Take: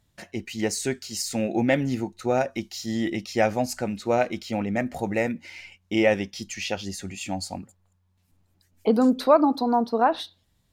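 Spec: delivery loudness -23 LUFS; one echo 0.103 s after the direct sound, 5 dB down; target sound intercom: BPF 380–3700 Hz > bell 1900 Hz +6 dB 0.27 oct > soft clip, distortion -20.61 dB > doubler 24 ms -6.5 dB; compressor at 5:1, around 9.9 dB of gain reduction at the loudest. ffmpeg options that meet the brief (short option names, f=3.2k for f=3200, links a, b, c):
-filter_complex "[0:a]acompressor=threshold=-23dB:ratio=5,highpass=380,lowpass=3.7k,equalizer=f=1.9k:t=o:w=0.27:g=6,aecho=1:1:103:0.562,asoftclip=threshold=-18dB,asplit=2[a][b];[b]adelay=24,volume=-6.5dB[c];[a][c]amix=inputs=2:normalize=0,volume=8.5dB"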